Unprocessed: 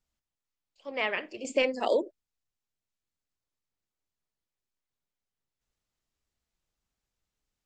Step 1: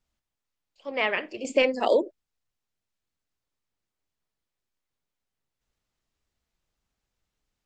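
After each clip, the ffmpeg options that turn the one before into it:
-af "highshelf=f=7200:g=-7,volume=1.68"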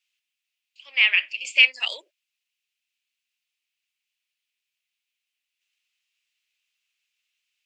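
-af "highpass=f=2600:t=q:w=4.1,volume=1.41"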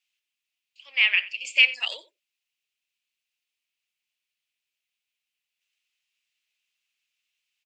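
-af "aecho=1:1:90:0.119,volume=0.794"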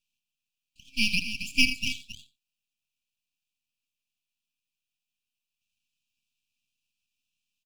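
-af "aecho=1:1:78.72|271.1:0.251|0.282,aeval=exprs='max(val(0),0)':c=same,afftfilt=real='re*(1-between(b*sr/4096,280,2300))':imag='im*(1-between(b*sr/4096,280,2300))':win_size=4096:overlap=0.75"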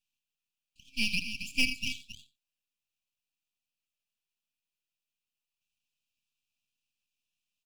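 -af "asoftclip=type=tanh:threshold=0.398,volume=0.631"

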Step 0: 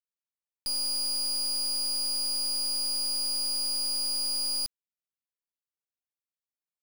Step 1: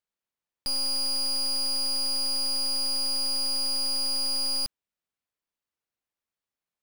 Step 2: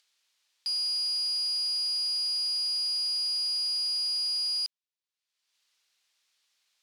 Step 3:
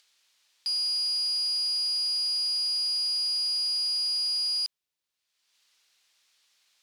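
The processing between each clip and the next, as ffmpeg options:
-af "highshelf=f=4600:g=-10,volume=2.37"
-af "acompressor=mode=upward:threshold=0.00398:ratio=2.5,bandpass=f=4300:t=q:w=1.2:csg=0"
-af "alimiter=level_in=1.88:limit=0.0631:level=0:latency=1,volume=0.531,volume=2"

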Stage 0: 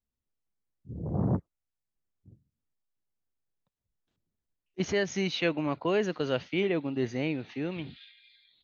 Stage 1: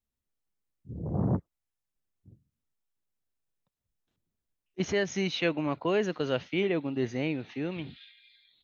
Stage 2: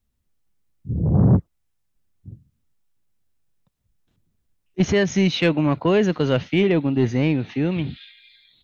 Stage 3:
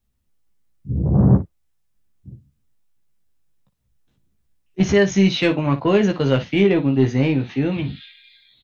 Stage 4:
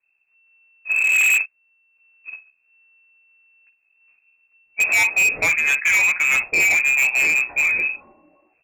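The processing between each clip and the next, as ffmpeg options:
-af "bandreject=f=4600:w=17"
-af "bass=f=250:g=8,treble=f=4000:g=-1,asoftclip=type=tanh:threshold=0.15,volume=2.66"
-af "aecho=1:1:15|57:0.596|0.224"
-af "acrusher=bits=4:mode=log:mix=0:aa=0.000001,lowpass=f=2300:t=q:w=0.5098,lowpass=f=2300:t=q:w=0.6013,lowpass=f=2300:t=q:w=0.9,lowpass=f=2300:t=q:w=2.563,afreqshift=-2700,asoftclip=type=hard:threshold=0.15,volume=1.33"

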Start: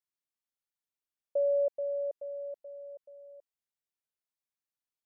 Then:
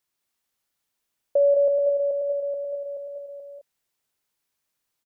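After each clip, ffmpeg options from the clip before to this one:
-filter_complex "[0:a]asplit=2[s0][s1];[s1]acompressor=threshold=0.0126:ratio=6,volume=1[s2];[s0][s2]amix=inputs=2:normalize=0,aecho=1:1:53|186|212:0.106|0.531|0.473,volume=2.11"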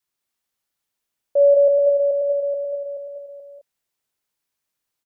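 -af "adynamicequalizer=threshold=0.0224:dfrequency=590:dqfactor=2.4:tfrequency=590:tqfactor=2.4:attack=5:release=100:ratio=0.375:range=3.5:mode=boostabove:tftype=bell,volume=0.841"

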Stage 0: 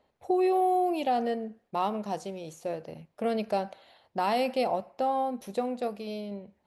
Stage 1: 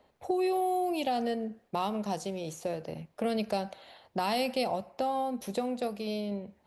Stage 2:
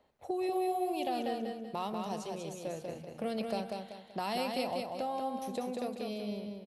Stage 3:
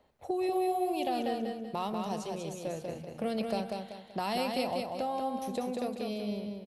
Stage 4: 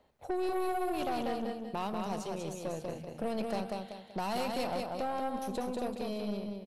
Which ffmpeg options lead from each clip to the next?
-filter_complex "[0:a]acrossover=split=170|3000[s0][s1][s2];[s1]acompressor=threshold=0.01:ratio=2[s3];[s0][s3][s2]amix=inputs=3:normalize=0,volume=1.78"
-af "aecho=1:1:191|382|573|764|955:0.631|0.233|0.0864|0.032|0.0118,volume=0.531"
-af "lowshelf=f=120:g=5,volume=1.26"
-af "aeval=exprs='(tanh(31.6*val(0)+0.55)-tanh(0.55))/31.6':c=same,volume=1.26"

